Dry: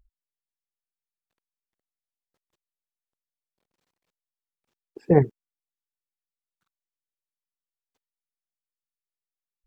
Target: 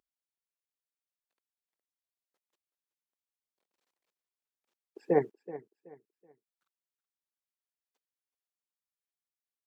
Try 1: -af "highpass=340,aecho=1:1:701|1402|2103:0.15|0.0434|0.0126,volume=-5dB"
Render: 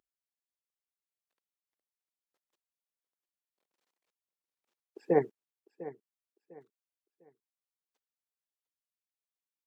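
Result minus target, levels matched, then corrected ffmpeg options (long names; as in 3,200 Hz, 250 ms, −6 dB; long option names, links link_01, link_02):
echo 324 ms late
-af "highpass=340,aecho=1:1:377|754|1131:0.15|0.0434|0.0126,volume=-5dB"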